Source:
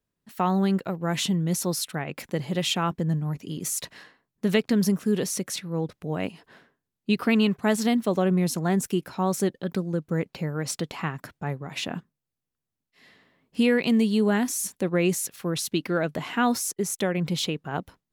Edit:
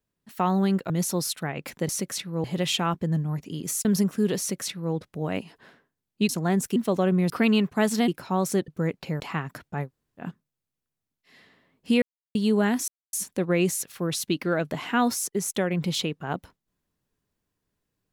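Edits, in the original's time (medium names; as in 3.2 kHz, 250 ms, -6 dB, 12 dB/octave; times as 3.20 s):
0.90–1.42 s: delete
3.82–4.73 s: delete
5.27–5.82 s: copy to 2.41 s
7.17–7.95 s: swap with 8.49–8.96 s
9.56–10.00 s: delete
10.52–10.89 s: delete
11.55–11.91 s: room tone, crossfade 0.10 s
13.71–14.04 s: mute
14.57 s: insert silence 0.25 s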